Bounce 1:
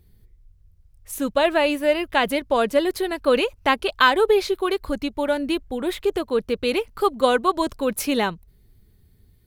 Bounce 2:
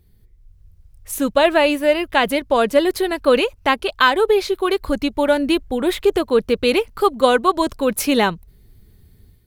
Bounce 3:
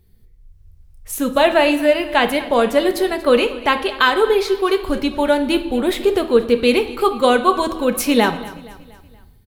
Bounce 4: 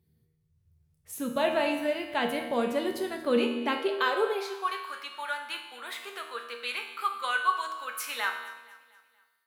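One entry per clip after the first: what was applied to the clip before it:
AGC gain up to 7 dB
feedback echo 0.236 s, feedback 48%, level -18.5 dB; reverb RT60 0.75 s, pre-delay 4 ms, DRR 7 dB
resonator 79 Hz, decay 0.9 s, harmonics all, mix 80%; high-pass sweep 130 Hz -> 1300 Hz, 3.16–4.91; gain -3 dB

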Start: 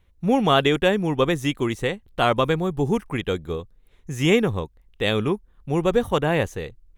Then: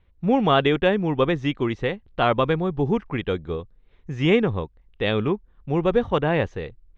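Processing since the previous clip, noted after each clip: Bessel low-pass 3200 Hz, order 6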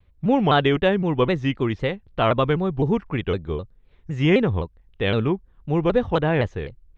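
bell 90 Hz +4.5 dB 1.6 oct; shaped vibrato saw down 3.9 Hz, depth 160 cents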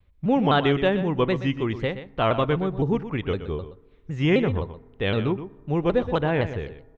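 echo 0.123 s -12 dB; on a send at -21 dB: reverb RT60 1.5 s, pre-delay 4 ms; on the sum: gain -2.5 dB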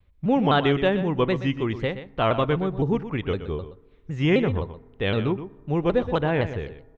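nothing audible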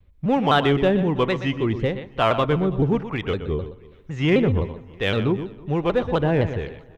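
in parallel at -9 dB: overloaded stage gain 24.5 dB; on the sum: harmonic tremolo 1.1 Hz, depth 50%, crossover 580 Hz; feedback echo 0.327 s, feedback 35%, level -23 dB; gain +3 dB

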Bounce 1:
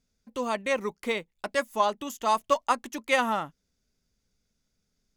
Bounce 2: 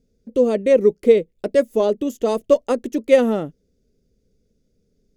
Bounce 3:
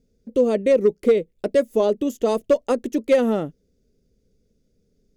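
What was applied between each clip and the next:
resonant low shelf 670 Hz +12.5 dB, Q 3; gain -1 dB
compressor 2:1, threshold -14 dBFS, peak gain reduction 4.5 dB; hard clip -9 dBFS, distortion -26 dB

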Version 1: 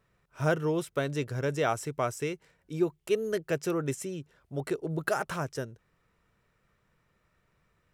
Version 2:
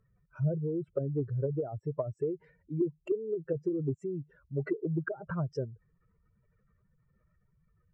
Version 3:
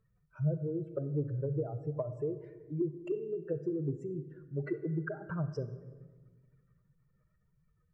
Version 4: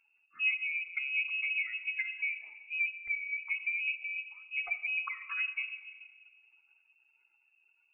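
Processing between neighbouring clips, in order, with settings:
spectral contrast raised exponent 2.5; treble ducked by the level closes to 300 Hz, closed at -26 dBFS; gain +1.5 dB
shoebox room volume 1200 m³, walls mixed, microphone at 0.54 m; gain -3.5 dB
inverted band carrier 2700 Hz

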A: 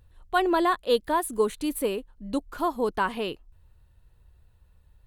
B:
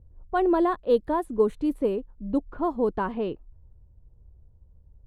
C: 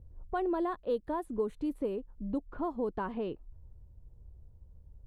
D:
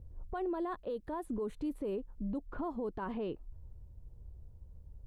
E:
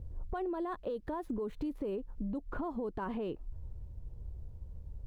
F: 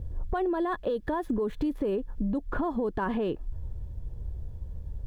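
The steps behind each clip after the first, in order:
tilt shelf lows +10 dB, about 1300 Hz; low-pass opened by the level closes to 640 Hz, open at -15 dBFS; gain -5.5 dB
compressor 2:1, threshold -37 dBFS, peak gain reduction 11.5 dB
limiter -32 dBFS, peak gain reduction 11 dB; gain +2 dB
median filter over 5 samples; compressor 4:1, threshold -41 dBFS, peak gain reduction 7.5 dB; gain +6.5 dB
small resonant body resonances 1700/3400 Hz, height 9 dB, ringing for 25 ms; gain +8 dB

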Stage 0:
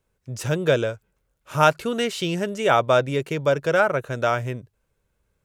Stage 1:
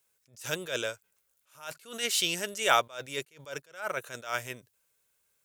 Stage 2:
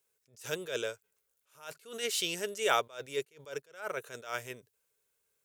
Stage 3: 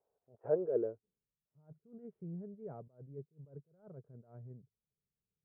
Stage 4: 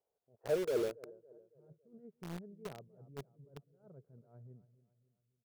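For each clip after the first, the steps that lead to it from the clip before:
tilt +4.5 dB/oct; attack slew limiter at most 150 dB/s; gain -5 dB
bell 430 Hz +10 dB 0.34 oct; gain -5 dB
low-pass sweep 710 Hz -> 170 Hz, 0.38–1.31; inverse Chebyshev low-pass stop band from 5800 Hz, stop band 60 dB; bell 720 Hz +6.5 dB 0.56 oct; gain -1 dB
feedback echo 0.278 s, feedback 47%, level -16.5 dB; in parallel at -8.5 dB: companded quantiser 2-bit; on the sum: gain -4.5 dB

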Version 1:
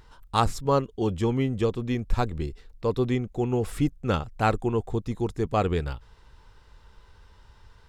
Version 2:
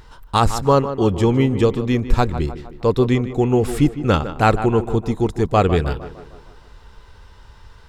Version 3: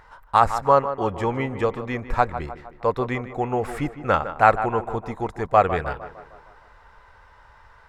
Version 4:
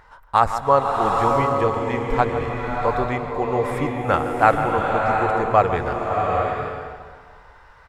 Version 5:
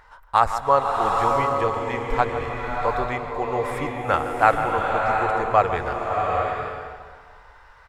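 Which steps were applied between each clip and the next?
on a send: tape echo 0.154 s, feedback 57%, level -11 dB, low-pass 2200 Hz; on the sum: maximiser +10.5 dB; gain -2 dB
band shelf 1100 Hz +13 dB 2.4 oct; gain -11.5 dB
echo 0.115 s -21 dB; bloom reverb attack 0.79 s, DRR 0.5 dB
bell 190 Hz -7 dB 2.5 oct

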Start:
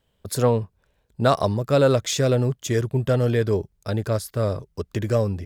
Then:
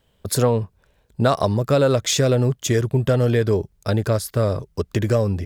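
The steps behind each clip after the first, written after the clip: compressor 2.5:1, threshold -22 dBFS, peak gain reduction 6.5 dB; gain +6 dB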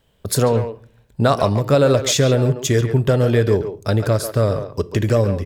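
speakerphone echo 0.14 s, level -8 dB; reverb RT60 0.50 s, pre-delay 7 ms, DRR 16 dB; gain +2 dB

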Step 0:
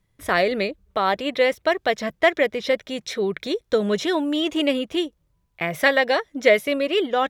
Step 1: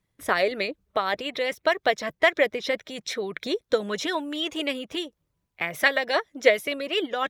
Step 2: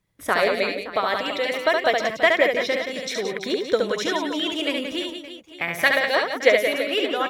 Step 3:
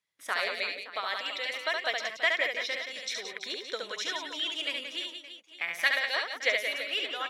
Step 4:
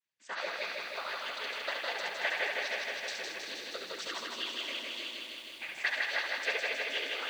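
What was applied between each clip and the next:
harmonic-percussive split harmonic -9 dB; low shelf 67 Hz -10 dB
reverse bouncing-ball echo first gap 70 ms, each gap 1.5×, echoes 5; gain +1.5 dB
band-pass 4000 Hz, Q 0.53; gain -4 dB
diffused feedback echo 0.459 s, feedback 45%, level -15 dB; noise vocoder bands 16; lo-fi delay 0.158 s, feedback 80%, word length 9-bit, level -3.5 dB; gain -6.5 dB

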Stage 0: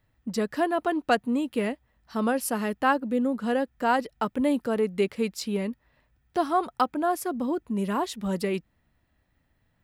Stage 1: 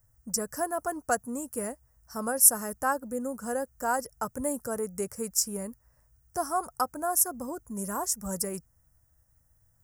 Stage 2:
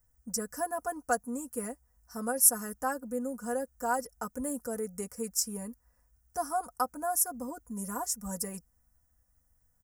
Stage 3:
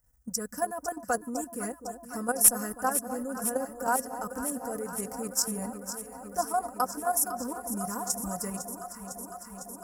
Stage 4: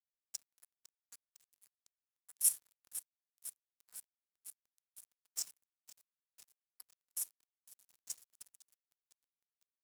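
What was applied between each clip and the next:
EQ curve 110 Hz 0 dB, 210 Hz -13 dB, 350 Hz -15 dB, 530 Hz -8 dB, 1000 Hz -9 dB, 1500 Hz -7 dB, 2200 Hz -20 dB, 3800 Hz -30 dB, 5500 Hz +6 dB, 8300 Hz +11 dB; gain +4 dB
comb 4.1 ms, depth 74%; gain -5.5 dB
level quantiser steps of 10 dB; one-sided clip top -17 dBFS; echo with dull and thin repeats by turns 0.252 s, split 960 Hz, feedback 89%, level -10 dB; gain +5.5 dB
ladder high-pass 2500 Hz, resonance 20%; reverb, pre-delay 6 ms, DRR 6.5 dB; crossover distortion -36.5 dBFS; gain -5 dB

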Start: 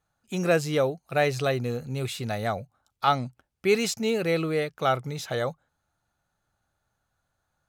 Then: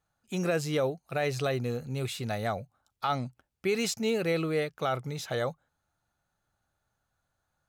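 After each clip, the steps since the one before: limiter -16.5 dBFS, peak gain reduction 7.5 dB; gain -2.5 dB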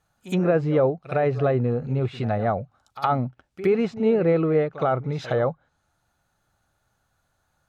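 treble ducked by the level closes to 1200 Hz, closed at -29 dBFS; pre-echo 66 ms -15 dB; gain +8.5 dB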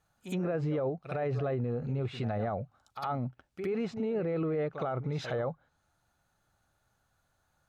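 limiter -21.5 dBFS, peak gain reduction 11 dB; gain -3.5 dB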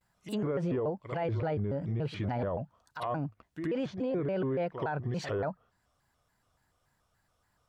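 shaped vibrato square 3.5 Hz, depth 250 cents

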